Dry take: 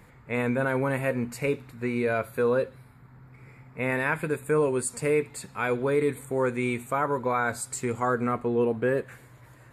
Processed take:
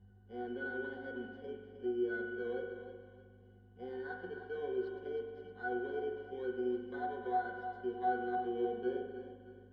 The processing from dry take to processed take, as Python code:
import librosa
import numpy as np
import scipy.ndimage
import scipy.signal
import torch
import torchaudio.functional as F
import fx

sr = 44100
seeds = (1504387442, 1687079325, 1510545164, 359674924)

p1 = fx.bit_reversed(x, sr, seeds[0], block=16)
p2 = scipy.signal.sosfilt(scipy.signal.butter(6, 250.0, 'highpass', fs=sr, output='sos'), p1)
p3 = fx.peak_eq(p2, sr, hz=860.0, db=-10.0, octaves=0.21)
p4 = p3 + 0.36 * np.pad(p3, (int(3.9 * sr / 1000.0), 0))[:len(p3)]
p5 = p4 + fx.echo_feedback(p4, sr, ms=312, feedback_pct=35, wet_db=-10, dry=0)
p6 = fx.add_hum(p5, sr, base_hz=50, snr_db=23)
p7 = scipy.signal.sosfilt(scipy.signal.butter(2, 3400.0, 'lowpass', fs=sr, output='sos'), p6)
p8 = fx.octave_resonator(p7, sr, note='F#', decay_s=0.26)
p9 = fx.rev_spring(p8, sr, rt60_s=1.5, pass_ms=(44,), chirp_ms=75, drr_db=3.5)
y = F.gain(torch.from_numpy(p9), 4.0).numpy()